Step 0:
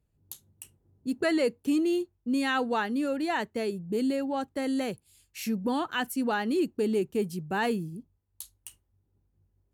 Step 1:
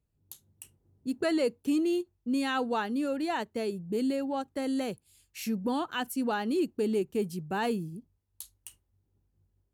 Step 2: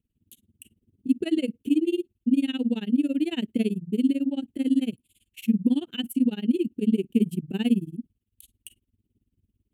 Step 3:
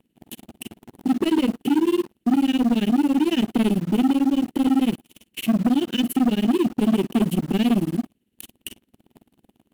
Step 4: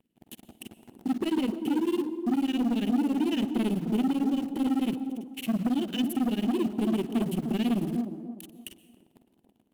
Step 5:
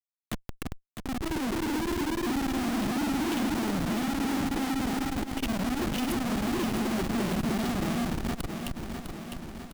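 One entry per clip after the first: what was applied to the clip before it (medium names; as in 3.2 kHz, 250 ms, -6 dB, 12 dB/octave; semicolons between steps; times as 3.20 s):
level rider gain up to 3 dB; dynamic bell 1.9 kHz, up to -5 dB, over -43 dBFS, Q 2.6; endings held to a fixed fall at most 580 dB/s; trim -4.5 dB
FFT filter 150 Hz 0 dB, 230 Hz +13 dB, 1.1 kHz -23 dB, 3 kHz +7 dB, 5 kHz -15 dB, 8.5 kHz -1 dB; gain riding 0.5 s; tremolo 18 Hz, depth 97%; trim +3 dB
spectral levelling over time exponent 0.6; waveshaping leveller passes 3; in parallel at -6 dB: bit crusher 5-bit; on the sum: trim -9 dB
feedback echo behind a band-pass 301 ms, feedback 32%, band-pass 400 Hz, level -7 dB; plate-style reverb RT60 0.98 s, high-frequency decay 0.85×, pre-delay 110 ms, DRR 17.5 dB; trim -7.5 dB
Schmitt trigger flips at -36.5 dBFS; feedback delay 654 ms, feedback 58%, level -7.5 dB; transformer saturation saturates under 90 Hz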